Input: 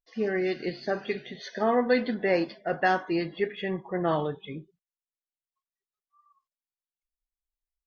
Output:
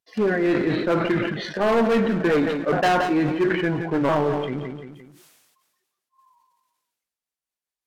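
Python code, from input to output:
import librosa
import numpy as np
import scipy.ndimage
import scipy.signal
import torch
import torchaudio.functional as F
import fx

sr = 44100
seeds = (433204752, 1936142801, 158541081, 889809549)

p1 = fx.pitch_ramps(x, sr, semitones=-3.5, every_ms=1363)
p2 = scipy.signal.sosfilt(scipy.signal.butter(2, 140.0, 'highpass', fs=sr, output='sos'), p1)
p3 = fx.mod_noise(p2, sr, seeds[0], snr_db=19)
p4 = fx.quant_dither(p3, sr, seeds[1], bits=6, dither='none')
p5 = p3 + F.gain(torch.from_numpy(p4), -6.0).numpy()
p6 = fx.env_lowpass_down(p5, sr, base_hz=2000.0, full_db=-32.0)
p7 = np.clip(10.0 ** (22.0 / 20.0) * p6, -1.0, 1.0) / 10.0 ** (22.0 / 20.0)
p8 = p7 + fx.echo_feedback(p7, sr, ms=173, feedback_pct=30, wet_db=-14.5, dry=0)
p9 = fx.sustainer(p8, sr, db_per_s=39.0)
y = F.gain(torch.from_numpy(p9), 6.0).numpy()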